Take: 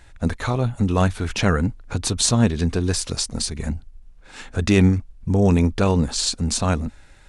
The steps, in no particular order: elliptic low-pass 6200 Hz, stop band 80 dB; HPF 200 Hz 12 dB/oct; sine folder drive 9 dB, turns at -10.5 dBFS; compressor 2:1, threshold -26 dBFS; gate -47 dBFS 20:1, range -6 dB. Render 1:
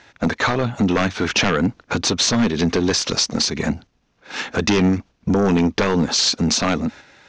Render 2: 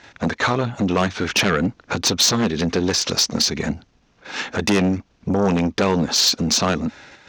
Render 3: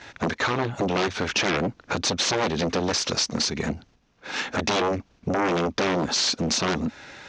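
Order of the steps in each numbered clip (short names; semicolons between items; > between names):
HPF > compressor > gate > sine folder > elliptic low-pass; gate > elliptic low-pass > compressor > sine folder > HPF; sine folder > HPF > gate > elliptic low-pass > compressor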